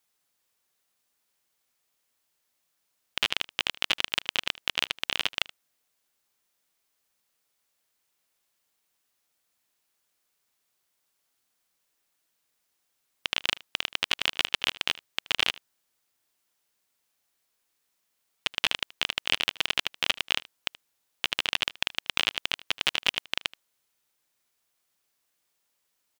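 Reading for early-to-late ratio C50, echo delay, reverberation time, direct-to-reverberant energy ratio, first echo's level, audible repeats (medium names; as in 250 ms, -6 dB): no reverb, 77 ms, no reverb, no reverb, -20.5 dB, 1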